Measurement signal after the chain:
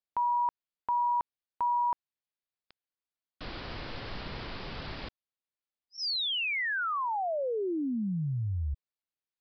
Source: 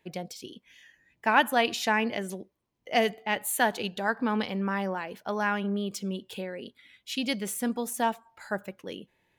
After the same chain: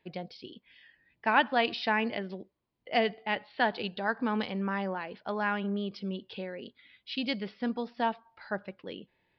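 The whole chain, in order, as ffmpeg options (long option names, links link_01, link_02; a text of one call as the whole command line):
ffmpeg -i in.wav -af "aresample=11025,aresample=44100,volume=-2.5dB" out.wav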